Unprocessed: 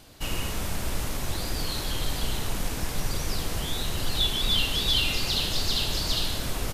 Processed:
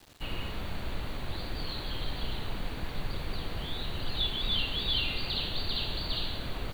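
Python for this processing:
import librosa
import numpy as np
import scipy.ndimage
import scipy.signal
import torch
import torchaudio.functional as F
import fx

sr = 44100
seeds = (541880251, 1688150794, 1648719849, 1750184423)

y = fx.brickwall_lowpass(x, sr, high_hz=4700.0)
y = fx.quant_dither(y, sr, seeds[0], bits=8, dither='none')
y = F.gain(torch.from_numpy(y), -5.5).numpy()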